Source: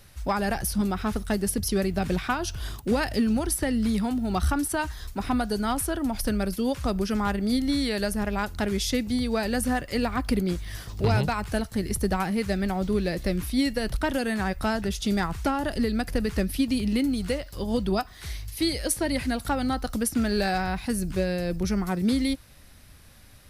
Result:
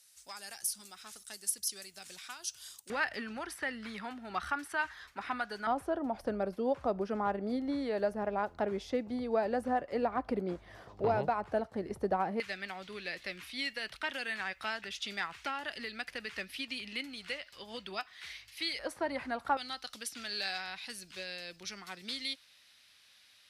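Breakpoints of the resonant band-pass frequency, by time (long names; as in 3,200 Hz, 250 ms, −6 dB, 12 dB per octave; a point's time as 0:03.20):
resonant band-pass, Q 1.4
7,700 Hz
from 0:02.90 1,700 Hz
from 0:05.67 650 Hz
from 0:12.40 2,500 Hz
from 0:18.79 1,000 Hz
from 0:19.57 3,500 Hz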